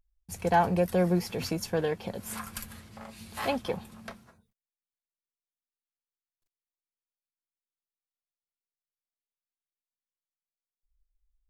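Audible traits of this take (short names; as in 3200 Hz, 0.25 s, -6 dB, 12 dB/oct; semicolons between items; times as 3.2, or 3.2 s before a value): noise floor -96 dBFS; spectral tilt -5.5 dB/oct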